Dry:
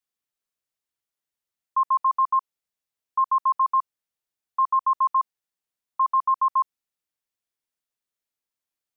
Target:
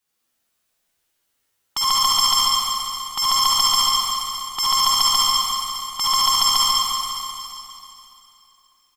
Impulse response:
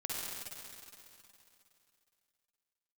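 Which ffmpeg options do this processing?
-filter_complex "[0:a]aecho=1:1:12|60:0.596|0.266,aeval=exprs='0.178*(cos(1*acos(clip(val(0)/0.178,-1,1)))-cos(1*PI/2))+0.0112*(cos(3*acos(clip(val(0)/0.178,-1,1)))-cos(3*PI/2))+0.00562*(cos(6*acos(clip(val(0)/0.178,-1,1)))-cos(6*PI/2))+0.00708*(cos(7*acos(clip(val(0)/0.178,-1,1)))-cos(7*PI/2))':c=same,aeval=exprs='0.188*sin(PI/2*5.01*val(0)/0.188)':c=same[s0];[1:a]atrim=start_sample=2205[s1];[s0][s1]afir=irnorm=-1:irlink=0"

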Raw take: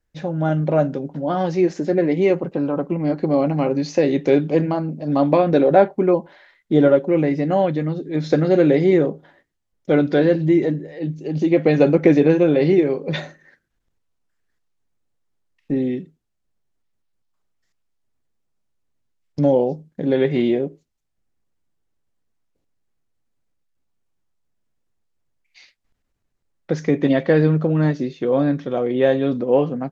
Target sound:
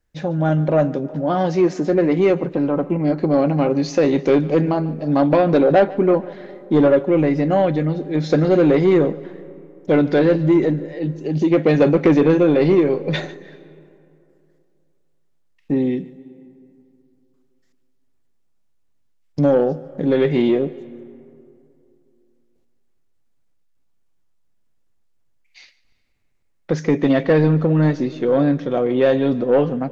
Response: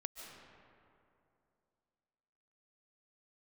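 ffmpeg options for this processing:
-filter_complex "[0:a]acontrast=86,asplit=2[s0][s1];[1:a]atrim=start_sample=2205,adelay=146[s2];[s1][s2]afir=irnorm=-1:irlink=0,volume=0.168[s3];[s0][s3]amix=inputs=2:normalize=0,volume=0.596"

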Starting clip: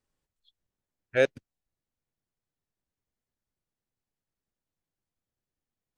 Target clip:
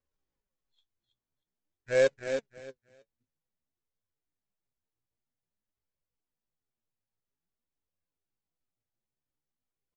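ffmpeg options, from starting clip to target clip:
-af "highshelf=f=2600:g=-8,aresample=16000,acrusher=bits=3:mode=log:mix=0:aa=0.000001,aresample=44100,aecho=1:1:189|378|567:0.473|0.0946|0.0189,atempo=0.6,flanger=delay=1.8:depth=7.2:regen=48:speed=0.5:shape=sinusoidal"

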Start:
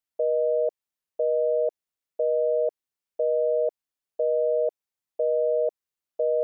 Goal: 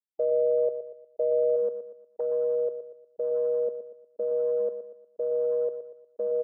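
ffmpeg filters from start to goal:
-af "asetnsamples=n=441:p=0,asendcmd='1.56 equalizer g -13',equalizer=f=660:w=4.1:g=-3,afftfilt=real='re*gte(hypot(re,im),0.0141)':imag='im*gte(hypot(re,im),0.0141)':win_size=1024:overlap=0.75,afwtdn=0.0112,aemphasis=mode=reproduction:type=75kf,aecho=1:1:119|238|357|476:0.316|0.123|0.0481|0.0188"

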